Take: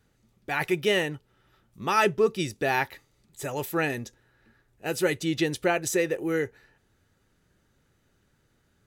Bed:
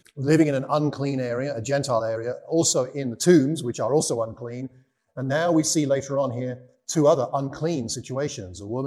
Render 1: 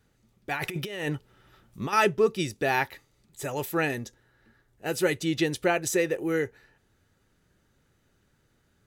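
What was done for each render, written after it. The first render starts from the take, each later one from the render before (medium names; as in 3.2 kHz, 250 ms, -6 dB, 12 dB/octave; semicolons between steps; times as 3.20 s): 0.53–1.93 s: compressor with a negative ratio -32 dBFS; 3.94–4.92 s: band-stop 2.5 kHz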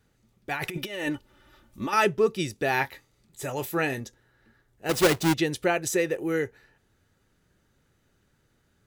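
0.77–1.94 s: comb 3.4 ms; 2.71–4.01 s: doubling 23 ms -11 dB; 4.89–5.34 s: square wave that keeps the level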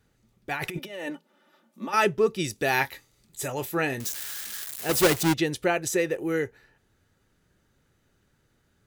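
0.79–1.94 s: rippled Chebyshev high-pass 160 Hz, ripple 6 dB; 2.44–3.48 s: treble shelf 3.3 kHz +7.5 dB; 4.00–5.23 s: zero-crossing glitches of -23.5 dBFS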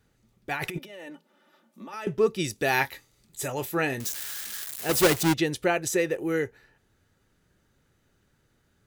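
0.78–2.07 s: compression 2.5:1, threshold -42 dBFS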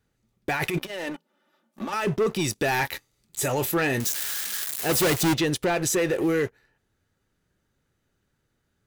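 waveshaping leveller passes 3; peak limiter -18 dBFS, peak gain reduction 9 dB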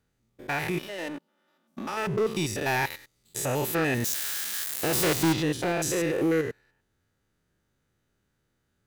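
spectrogram pixelated in time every 100 ms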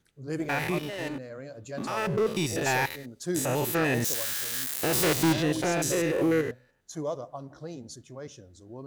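add bed -14.5 dB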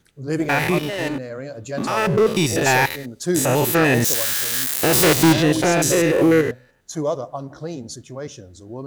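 trim +9.5 dB; peak limiter -3 dBFS, peak gain reduction 1 dB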